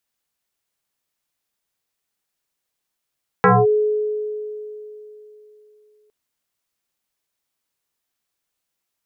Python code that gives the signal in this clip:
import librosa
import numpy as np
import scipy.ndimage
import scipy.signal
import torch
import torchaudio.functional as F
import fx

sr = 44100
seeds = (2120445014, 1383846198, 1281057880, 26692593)

y = fx.fm2(sr, length_s=2.66, level_db=-8.5, carrier_hz=424.0, ratio=0.72, index=4.4, index_s=0.22, decay_s=3.35, shape='linear')